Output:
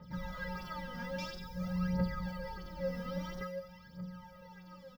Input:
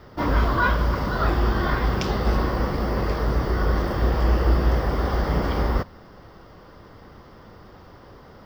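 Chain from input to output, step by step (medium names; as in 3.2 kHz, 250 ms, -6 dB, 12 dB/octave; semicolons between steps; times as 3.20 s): octave divider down 1 oct, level +3 dB; reverse; compression 6:1, threshold -24 dBFS, peak gain reduction 14.5 dB; reverse; time-frequency box 2.34–2.70 s, 280–5200 Hz -9 dB; tempo 1.7×; feedback comb 180 Hz, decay 0.82 s, harmonics odd, mix 100%; phaser 0.5 Hz, delay 4.3 ms, feedback 74%; trim +12 dB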